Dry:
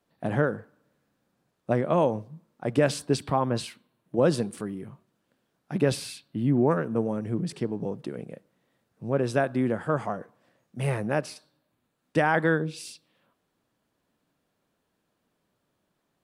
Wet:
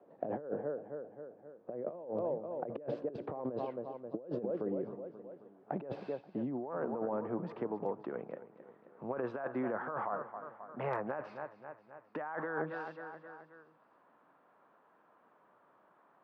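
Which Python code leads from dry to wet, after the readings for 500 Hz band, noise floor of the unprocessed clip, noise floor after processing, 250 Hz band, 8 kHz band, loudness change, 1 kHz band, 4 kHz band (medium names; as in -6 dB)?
-9.5 dB, -77 dBFS, -68 dBFS, -12.5 dB, under -35 dB, -12.5 dB, -9.5 dB, under -25 dB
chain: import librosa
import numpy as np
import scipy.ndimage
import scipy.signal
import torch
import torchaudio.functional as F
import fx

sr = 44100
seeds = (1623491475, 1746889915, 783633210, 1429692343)

y = fx.spacing_loss(x, sr, db_at_10k=41)
y = fx.echo_feedback(y, sr, ms=265, feedback_pct=43, wet_db=-17.0)
y = fx.filter_sweep_bandpass(y, sr, from_hz=520.0, to_hz=1100.0, start_s=4.52, end_s=8.2, q=1.7)
y = fx.over_compress(y, sr, threshold_db=-41.0, ratio=-1.0)
y = np.clip(y, -10.0 ** (-25.5 / 20.0), 10.0 ** (-25.5 / 20.0))
y = fx.low_shelf(y, sr, hz=93.0, db=-9.0)
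y = fx.band_squash(y, sr, depth_pct=40)
y = F.gain(torch.from_numpy(y), 3.0).numpy()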